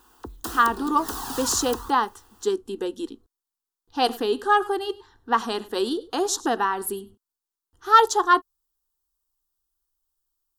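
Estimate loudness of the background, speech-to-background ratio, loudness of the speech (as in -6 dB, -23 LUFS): -34.0 LUFS, 10.5 dB, -23.5 LUFS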